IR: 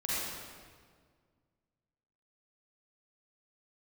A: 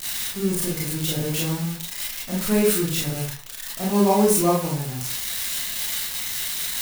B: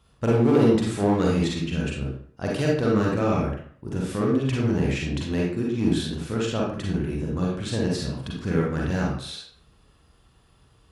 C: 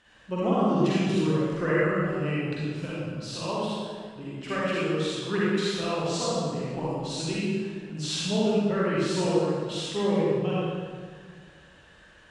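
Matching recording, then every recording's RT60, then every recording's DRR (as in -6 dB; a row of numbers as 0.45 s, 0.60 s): C; 0.40 s, 0.55 s, 1.8 s; -5.5 dB, -3.5 dB, -9.0 dB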